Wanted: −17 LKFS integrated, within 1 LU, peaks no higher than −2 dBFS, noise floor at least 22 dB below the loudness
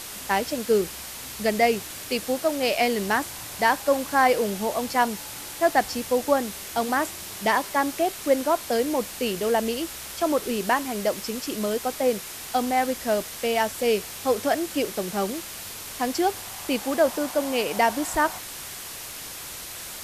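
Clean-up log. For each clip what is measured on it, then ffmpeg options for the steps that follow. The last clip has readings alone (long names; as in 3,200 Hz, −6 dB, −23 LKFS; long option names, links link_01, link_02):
background noise floor −38 dBFS; target noise floor −48 dBFS; integrated loudness −25.5 LKFS; sample peak −8.0 dBFS; target loudness −17.0 LKFS
→ -af "afftdn=noise_reduction=10:noise_floor=-38"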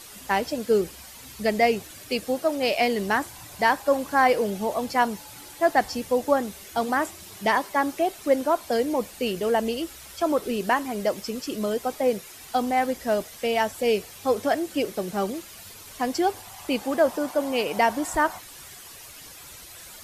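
background noise floor −44 dBFS; target noise floor −47 dBFS
→ -af "afftdn=noise_reduction=6:noise_floor=-44"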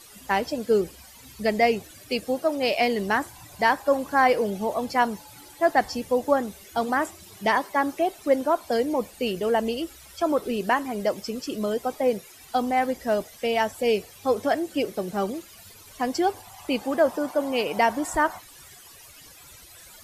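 background noise floor −48 dBFS; integrated loudness −25.5 LKFS; sample peak −8.0 dBFS; target loudness −17.0 LKFS
→ -af "volume=8.5dB,alimiter=limit=-2dB:level=0:latency=1"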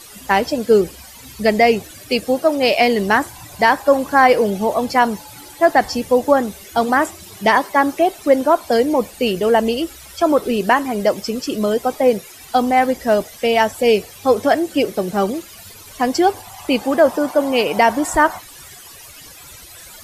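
integrated loudness −17.0 LKFS; sample peak −2.0 dBFS; background noise floor −40 dBFS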